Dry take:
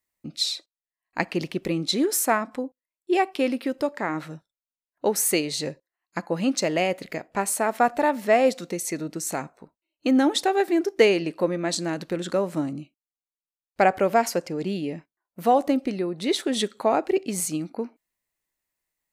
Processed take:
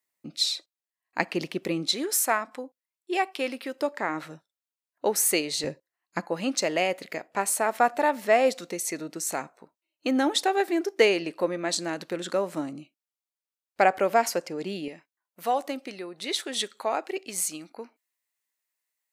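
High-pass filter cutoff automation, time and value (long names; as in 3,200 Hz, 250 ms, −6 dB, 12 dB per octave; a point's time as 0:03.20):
high-pass filter 6 dB per octave
270 Hz
from 0:01.92 810 Hz
from 0:03.81 380 Hz
from 0:05.64 120 Hz
from 0:06.28 430 Hz
from 0:14.88 1,200 Hz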